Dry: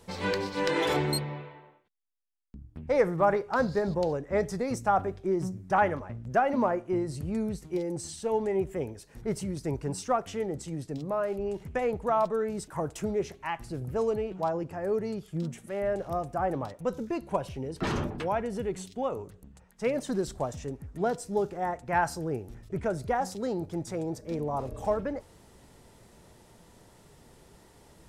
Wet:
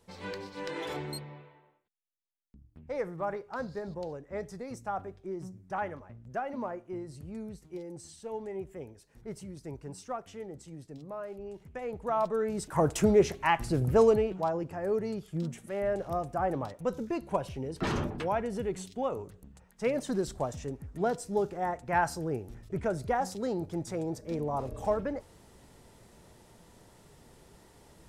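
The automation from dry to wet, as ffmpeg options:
ffmpeg -i in.wav -af "volume=7.5dB,afade=type=in:start_time=11.8:duration=0.81:silence=0.281838,afade=type=in:start_time=12.61:duration=0.28:silence=0.473151,afade=type=out:start_time=13.96:duration=0.47:silence=0.375837" out.wav

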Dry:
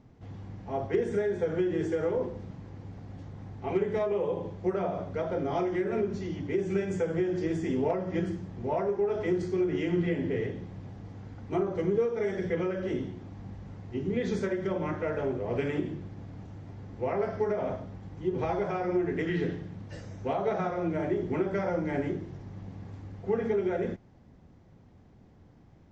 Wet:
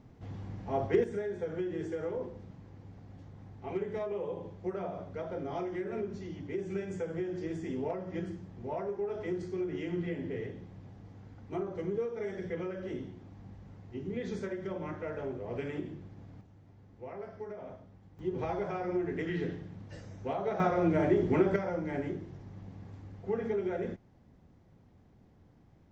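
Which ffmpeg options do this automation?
ffmpeg -i in.wav -af "asetnsamples=nb_out_samples=441:pad=0,asendcmd='1.04 volume volume -7dB;16.41 volume volume -13.5dB;18.19 volume volume -4.5dB;20.6 volume volume 3dB;21.56 volume volume -4.5dB',volume=0.5dB" out.wav

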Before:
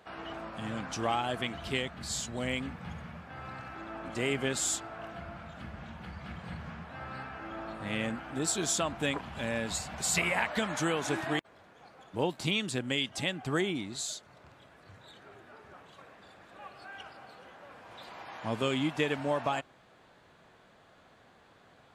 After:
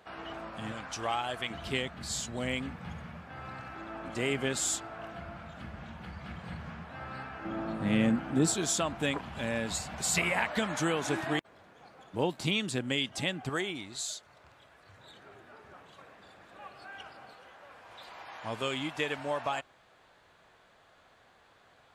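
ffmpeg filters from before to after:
ffmpeg -i in.wav -af "asetnsamples=nb_out_samples=441:pad=0,asendcmd='0.72 equalizer g -9;1.5 equalizer g 0;7.45 equalizer g 10.5;8.54 equalizer g 1;13.49 equalizer g -8;14.98 equalizer g -1;17.33 equalizer g -8',equalizer=frequency=200:width_type=o:width=2.2:gain=-1.5" out.wav

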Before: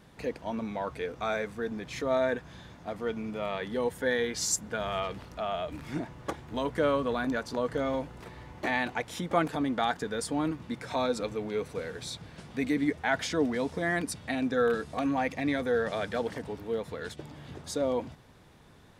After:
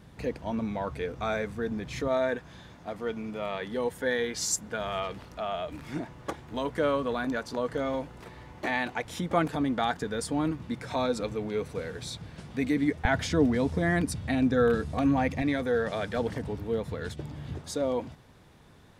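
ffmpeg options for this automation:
ffmpeg -i in.wav -af "asetnsamples=nb_out_samples=441:pad=0,asendcmd='2.08 equalizer g -1;9.05 equalizer g 5.5;13.05 equalizer g 14.5;15.42 equalizer g 4.5;16.17 equalizer g 11;17.59 equalizer g 1.5',equalizer=frequency=75:width_type=o:width=2.8:gain=8.5" out.wav

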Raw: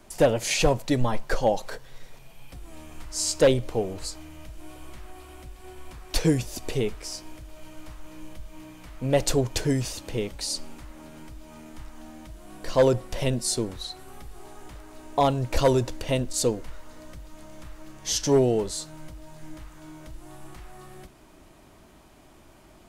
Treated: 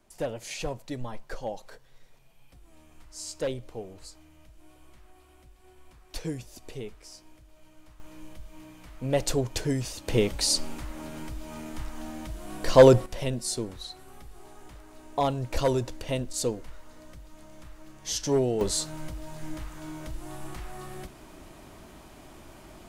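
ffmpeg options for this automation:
ffmpeg -i in.wav -af "asetnsamples=nb_out_samples=441:pad=0,asendcmd='8 volume volume -3.5dB;10.08 volume volume 5.5dB;13.06 volume volume -4.5dB;18.61 volume volume 4.5dB',volume=-12dB" out.wav

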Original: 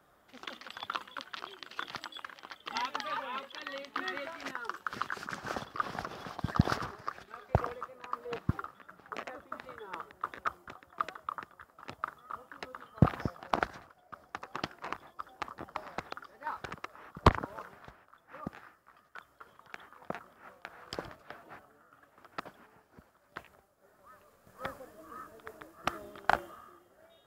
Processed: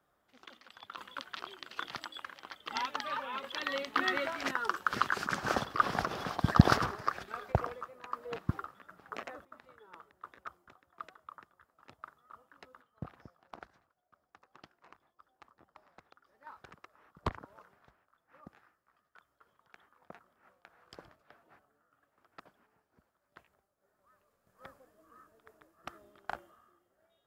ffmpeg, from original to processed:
ffmpeg -i in.wav -af "asetnsamples=nb_out_samples=441:pad=0,asendcmd='0.98 volume volume -0.5dB;3.44 volume volume 6dB;7.52 volume volume -1.5dB;9.45 volume volume -11.5dB;12.82 volume volume -19.5dB;16.26 volume volume -12.5dB',volume=-10dB" out.wav

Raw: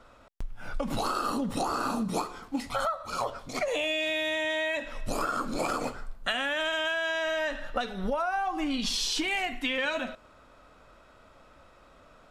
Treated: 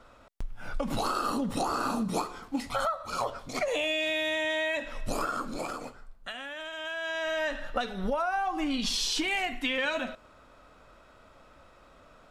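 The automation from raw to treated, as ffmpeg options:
ffmpeg -i in.wav -af "volume=10dB,afade=type=out:start_time=5.09:duration=0.82:silence=0.316228,afade=type=in:start_time=6.73:duration=0.73:silence=0.316228" out.wav

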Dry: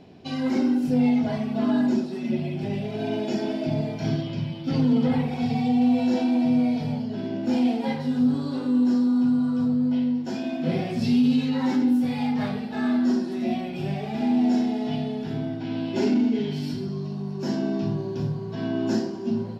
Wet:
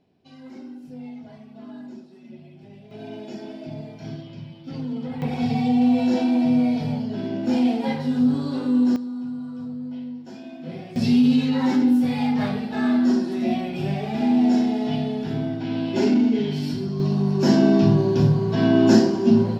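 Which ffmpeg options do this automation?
ffmpeg -i in.wav -af "asetnsamples=nb_out_samples=441:pad=0,asendcmd='2.91 volume volume -9dB;5.22 volume volume 2dB;8.96 volume volume -9.5dB;10.96 volume volume 3dB;17 volume volume 10dB',volume=-17dB" out.wav

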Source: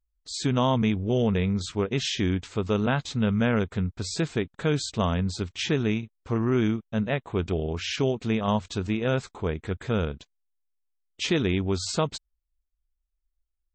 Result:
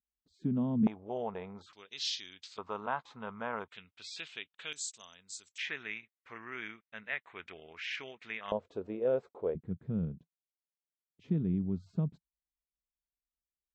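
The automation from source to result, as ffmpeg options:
ffmpeg -i in.wav -af "asetnsamples=nb_out_samples=441:pad=0,asendcmd='0.87 bandpass f 820;1.73 bandpass f 4500;2.58 bandpass f 990;3.68 bandpass f 2900;4.73 bandpass f 7400;5.58 bandpass f 2000;8.52 bandpass f 510;9.55 bandpass f 170',bandpass=frequency=210:width_type=q:width=3.1:csg=0" out.wav

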